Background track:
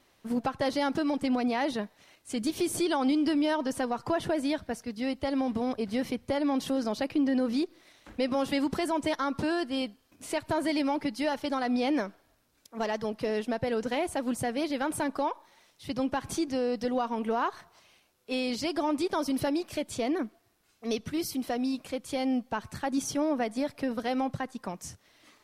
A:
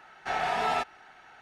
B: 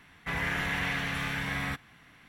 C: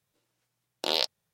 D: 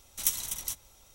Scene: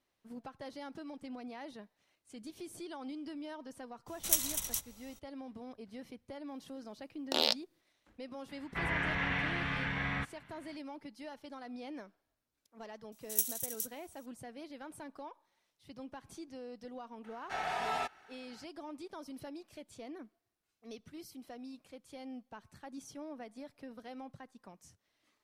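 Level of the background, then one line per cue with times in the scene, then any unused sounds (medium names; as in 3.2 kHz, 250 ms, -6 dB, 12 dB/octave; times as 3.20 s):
background track -17.5 dB
4.06 s: add D -1 dB, fades 0.02 s
6.48 s: add C -3 dB
8.49 s: add B -2.5 dB + low-pass 3.3 kHz
13.12 s: add D -5.5 dB + pre-emphasis filter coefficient 0.97
17.24 s: add A -7.5 dB + treble shelf 8.2 kHz +7.5 dB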